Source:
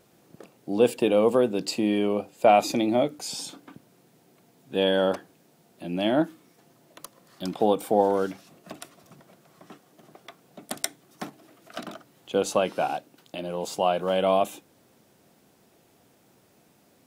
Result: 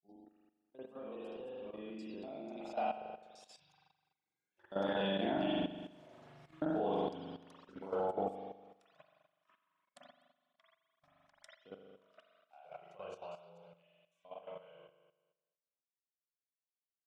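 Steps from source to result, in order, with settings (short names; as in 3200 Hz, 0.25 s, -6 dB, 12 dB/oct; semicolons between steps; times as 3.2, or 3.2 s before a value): slices in reverse order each 0.129 s, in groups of 6; Doppler pass-by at 6.1, 13 m/s, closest 2.3 m; notches 60/120/180/240/300/360/420/480/540 Hz; reverb removal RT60 0.73 s; LPF 6500 Hz 12 dB/oct; spectral noise reduction 22 dB; wow and flutter 16 cents; spring tank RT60 1.1 s, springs 41 ms, chirp 80 ms, DRR -9 dB; level quantiser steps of 12 dB; gain +2 dB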